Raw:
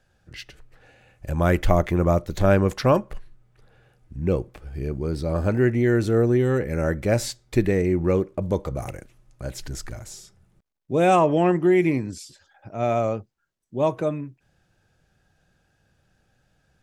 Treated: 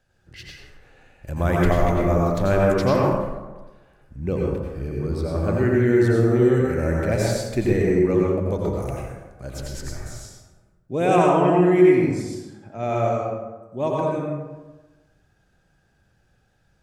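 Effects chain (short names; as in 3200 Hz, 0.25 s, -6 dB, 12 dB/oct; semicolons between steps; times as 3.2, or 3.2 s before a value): plate-style reverb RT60 1.2 s, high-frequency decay 0.5×, pre-delay 75 ms, DRR -3 dB; gain -3.5 dB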